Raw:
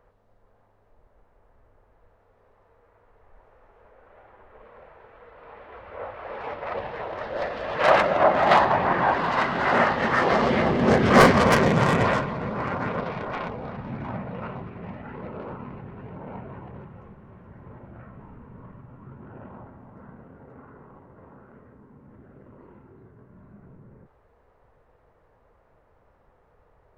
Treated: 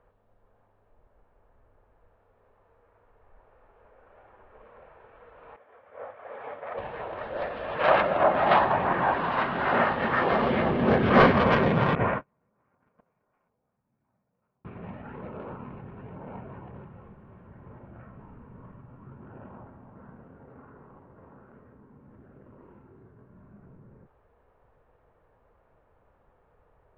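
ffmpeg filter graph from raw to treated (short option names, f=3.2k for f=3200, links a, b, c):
-filter_complex "[0:a]asettb=1/sr,asplit=3[a][b][c];[a]atrim=end=5.564[d];[b]atrim=start=5.56:end=6.78,asetpts=PTS-STARTPTS,afade=t=in:d=0.004:c=qsin,afade=t=out:st=1.216:d=0.004:c=qsin,agate=range=-33dB:threshold=-37dB:ratio=3:release=100:detection=peak,acompressor=mode=upward:threshold=-42dB:ratio=2.5:attack=3.2:release=140:knee=2.83:detection=peak,highpass=170,equalizer=f=190:t=q:w=4:g=-9,equalizer=f=340:t=q:w=4:g=-9,equalizer=f=940:t=q:w=4:g=-5,equalizer=f=1.4k:t=q:w=4:g=-3,equalizer=f=2.7k:t=q:w=4:g=-8,equalizer=f=4.1k:t=q:w=4:g=-9,lowpass=f=4.7k:w=0.5412,lowpass=f=4.7k:w=1.3066[e];[c]atrim=start=6.776[f];[d][e]acrossfade=d=0.004:c1=hsin:c2=qsin[g];[g][f]acrossfade=d=0.004:c1=qsin:c2=hsin,asettb=1/sr,asplit=3[h][i][j];[h]atrim=end=11.954[k];[i]atrim=start=11.95:end=14.65,asetpts=PTS-STARTPTS,afade=t=in:d=0.004:c=qsin,afade=t=out:st=2.696:d=0.004:c=qsin,lowpass=f=2.5k:w=0.5412,lowpass=f=2.5k:w=1.3066,agate=range=-41dB:threshold=-23dB:ratio=16:release=100:detection=peak[l];[j]atrim=start=14.646[m];[k][l]acrossfade=d=0.004:c1=hsin:c2=qsin[n];[n][m]acrossfade=d=0.004:c1=qsin:c2=hsin,lowpass=f=3.6k:w=0.5412,lowpass=f=3.6k:w=1.3066,bandreject=f=2k:w=16,volume=-3dB"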